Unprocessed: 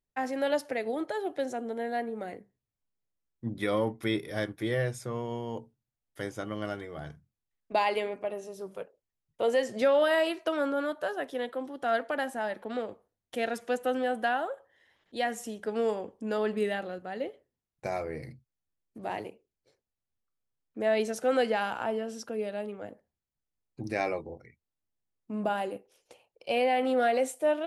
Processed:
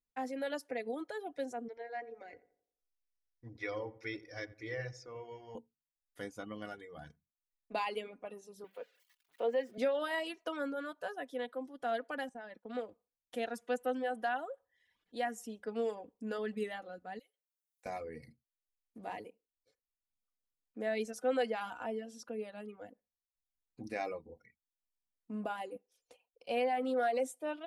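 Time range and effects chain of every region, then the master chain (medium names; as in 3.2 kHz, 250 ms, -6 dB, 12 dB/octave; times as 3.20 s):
1.68–5.55 s: FFT filter 130 Hz 0 dB, 200 Hz -23 dB, 310 Hz -4 dB, 1.3 kHz -5 dB, 2.3 kHz +4 dB, 3.4 kHz -9 dB, 5.6 kHz +7 dB, 9.2 kHz -24 dB + filtered feedback delay 87 ms, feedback 45%, low-pass 1.5 kHz, level -7 dB
8.64–9.78 s: zero-crossing glitches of -34 dBFS + three-band isolator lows -15 dB, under 210 Hz, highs -23 dB, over 3.3 kHz
12.29–12.75 s: expander -41 dBFS + compression 2.5:1, threshold -35 dBFS + distance through air 57 m
17.19–17.86 s: differentiator + three bands compressed up and down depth 70%
whole clip: reverb removal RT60 0.68 s; comb 4.1 ms, depth 48%; trim -8 dB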